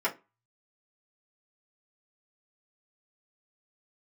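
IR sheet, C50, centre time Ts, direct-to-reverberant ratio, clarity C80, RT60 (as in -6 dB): 17.0 dB, 12 ms, -7.0 dB, 25.0 dB, 0.25 s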